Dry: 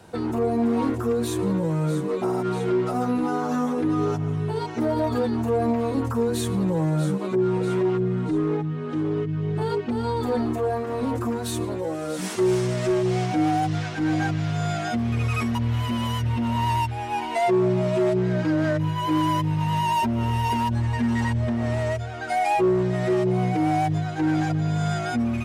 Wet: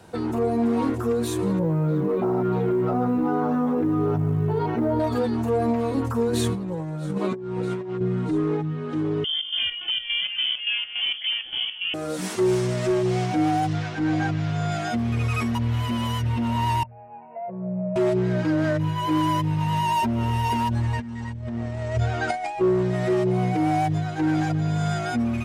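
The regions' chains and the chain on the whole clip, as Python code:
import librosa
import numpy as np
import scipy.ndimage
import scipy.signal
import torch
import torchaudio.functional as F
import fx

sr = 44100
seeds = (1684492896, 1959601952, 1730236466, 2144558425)

y = fx.chain(x, sr, fx.spacing_loss(db_at_10k=39),
    fx.quant_float(bits=6),
    fx.env_flatten(amount_pct=70), at=(1.59, 5.0))
y = fx.chain(y, sr, fx.highpass(hz=45.0, slope=12),
    fx.high_shelf(hz=7700.0, db=-6.5),
    fx.over_compress(threshold_db=-26.0, ratio=-0.5), at=(6.33, 8.01))
y = fx.chain(y, sr, fx.chopper(hz=3.5, depth_pct=65, duty_pct=60),
    fx.freq_invert(carrier_hz=3300), at=(9.24, 11.94))
y = fx.chain(y, sr, fx.lowpass(hz=9400.0, slope=12),
    fx.high_shelf(hz=5500.0, db=-5.5), at=(13.73, 14.72))
y = fx.chain(y, sr, fx.double_bandpass(hz=320.0, octaves=1.6),
    fx.resample_bad(factor=8, down='none', up='filtered'), at=(16.83, 17.96))
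y = fx.chain(y, sr, fx.low_shelf(hz=240.0, db=4.5),
    fx.over_compress(threshold_db=-26.0, ratio=-0.5),
    fx.steep_lowpass(hz=8800.0, slope=36), at=(20.99, 22.61))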